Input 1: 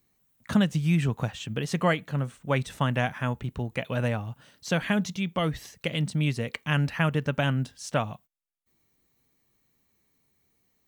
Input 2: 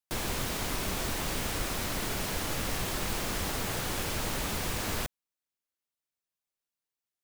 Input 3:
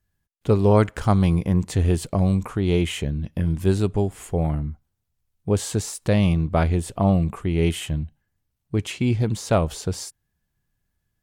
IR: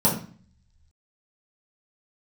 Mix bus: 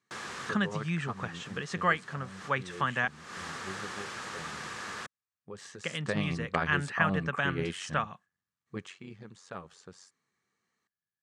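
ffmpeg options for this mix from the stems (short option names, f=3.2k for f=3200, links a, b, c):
-filter_complex "[0:a]volume=-5.5dB,asplit=3[a][b][c];[a]atrim=end=3.08,asetpts=PTS-STARTPTS,afade=t=out:st=3.076:d=0.004:c=hsin[d];[b]atrim=start=3.08:end=5.58,asetpts=PTS-STARTPTS,volume=0[e];[c]atrim=start=5.58,asetpts=PTS-STARTPTS,afade=t=in:d=0.004:c=hsin[f];[d][e][f]concat=n=3:v=0:a=1,asplit=2[g][h];[1:a]volume=-7.5dB[i];[2:a]tremolo=f=93:d=0.71,volume=-6dB,afade=t=in:st=5.75:d=0.44:silence=0.266073,afade=t=out:st=8.68:d=0.28:silence=0.251189[j];[h]apad=whole_len=318867[k];[i][k]sidechaincompress=threshold=-50dB:ratio=5:attack=22:release=220[l];[g][l][j]amix=inputs=3:normalize=0,highpass=180,equalizer=f=290:t=q:w=4:g=-7,equalizer=f=630:t=q:w=4:g=-5,equalizer=f=1.2k:t=q:w=4:g=9,equalizer=f=1.7k:t=q:w=4:g=9,lowpass=f=8.1k:w=0.5412,lowpass=f=8.1k:w=1.3066"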